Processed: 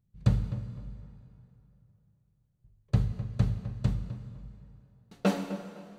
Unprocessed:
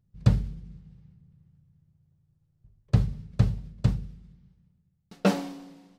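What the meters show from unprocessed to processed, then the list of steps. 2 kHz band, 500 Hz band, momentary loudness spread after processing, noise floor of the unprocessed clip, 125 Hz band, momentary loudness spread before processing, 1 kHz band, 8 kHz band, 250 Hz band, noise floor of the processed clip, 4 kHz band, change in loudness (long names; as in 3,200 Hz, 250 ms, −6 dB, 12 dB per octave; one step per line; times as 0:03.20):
−3.5 dB, −3.0 dB, 18 LU, −71 dBFS, −3.0 dB, 17 LU, −3.5 dB, can't be measured, −3.0 dB, −72 dBFS, −4.0 dB, −4.0 dB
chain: notch filter 5,200 Hz, Q 9
on a send: feedback echo with a low-pass in the loop 255 ms, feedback 32%, low-pass 2,000 Hz, level −12.5 dB
on the sum: dense smooth reverb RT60 2.9 s, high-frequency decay 0.75×, DRR 9.5 dB
level −4 dB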